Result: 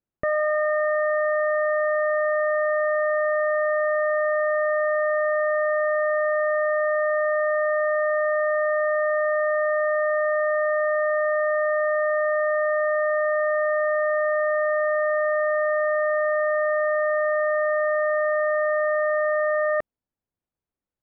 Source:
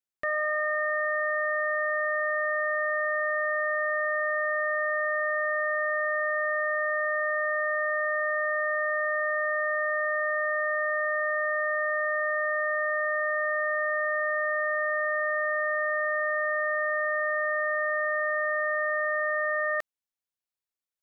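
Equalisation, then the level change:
low-pass filter 1,000 Hz 6 dB per octave
high-frequency loss of the air 210 metres
low-shelf EQ 460 Hz +10.5 dB
+7.0 dB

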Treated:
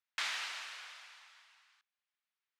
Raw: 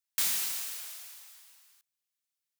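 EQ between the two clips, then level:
high-pass filter 1,200 Hz 12 dB per octave
head-to-tape spacing loss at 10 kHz 28 dB
high-shelf EQ 5,300 Hz −10 dB
+11.5 dB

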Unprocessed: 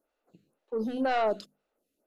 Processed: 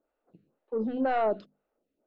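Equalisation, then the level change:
high-frequency loss of the air 170 metres
high-shelf EQ 2,900 Hz −8.5 dB
high-shelf EQ 6,400 Hz −9 dB
+1.5 dB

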